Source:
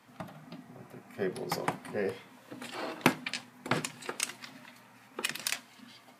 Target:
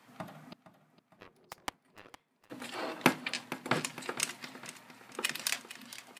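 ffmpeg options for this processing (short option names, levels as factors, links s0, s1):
-filter_complex "[0:a]lowshelf=f=85:g=-9.5,asettb=1/sr,asplit=3[s0][s1][s2];[s0]atrim=end=0.534[s3];[s1]atrim=start=0.53:end=2.5,asetpts=PTS-STARTPTS,afade=t=in:d=0.004:c=qsin,afade=t=out:st=1.966:d=0.004:c=qsin,aeval=exprs='0.168*(cos(1*acos(clip(val(0)/0.168,-1,1)))-cos(1*PI/2))+0.0596*(cos(3*acos(clip(val(0)/0.168,-1,1)))-cos(3*PI/2))':c=same[s4];[s2]atrim=start=2.496[s5];[s3][s4]acrossfade=d=0.004:c1=hsin:c2=qsin[s6];[s6][s5]acrossfade=d=0.004:c1=qsin:c2=hsin,asplit=2[s7][s8];[s8]aecho=0:1:460|920|1380|1840|2300:0.178|0.0871|0.0427|0.0209|0.0103[s9];[s7][s9]amix=inputs=2:normalize=0"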